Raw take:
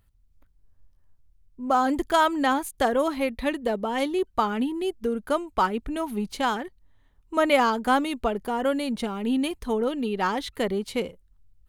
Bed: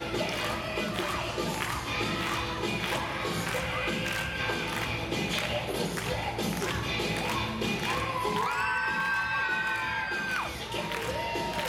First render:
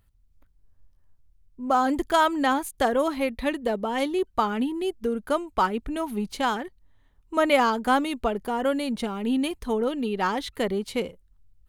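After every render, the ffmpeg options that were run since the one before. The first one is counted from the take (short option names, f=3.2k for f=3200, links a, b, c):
-af anull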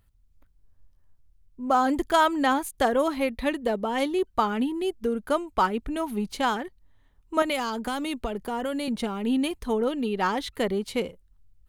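-filter_complex "[0:a]asettb=1/sr,asplit=3[a][b][c];[a]atrim=end=7.424[d];[b]atrim=start=7.42:end=8.88,asetpts=PTS-STARTPTS,afade=t=in:d=0.004:c=qsin,afade=t=out:st=1.456:d=0.004:c=qsin,acrossover=split=150|3000[e][f][g];[f]acompressor=threshold=-26dB:ratio=6:attack=3.2:release=140:knee=2.83:detection=peak[h];[e][h][g]amix=inputs=3:normalize=0[i];[c]atrim=start=8.876[j];[d][i]acrossfade=d=0.004:c1=hsin:c2=qsin[k];[k][j]acrossfade=d=0.004:c1=qsin:c2=hsin"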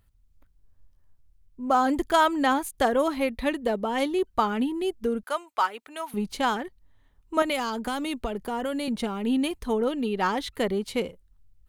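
-filter_complex "[0:a]asettb=1/sr,asplit=3[a][b][c];[a]atrim=end=5.234[d];[b]atrim=start=5.23:end=6.14,asetpts=PTS-STARTPTS,afade=t=in:d=0.004:c=qsin,afade=t=out:st=0.906:d=0.004:c=qsin,highpass=770[e];[c]atrim=start=6.136[f];[d][e]acrossfade=d=0.004:c1=hsin:c2=qsin[g];[g][f]acrossfade=d=0.004:c1=qsin:c2=hsin"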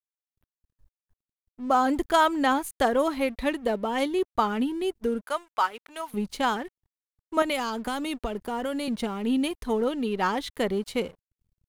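-af "aeval=exprs='sgn(val(0))*max(abs(val(0))-0.00282,0)':c=same"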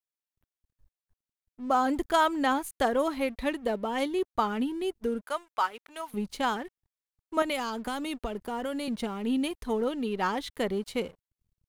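-af "volume=-3dB"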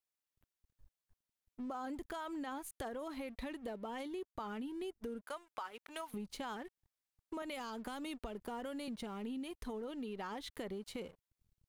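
-af "alimiter=limit=-23.5dB:level=0:latency=1:release=19,acompressor=threshold=-41dB:ratio=6"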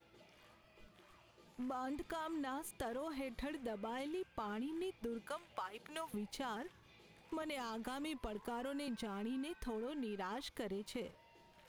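-filter_complex "[1:a]volume=-33.5dB[a];[0:a][a]amix=inputs=2:normalize=0"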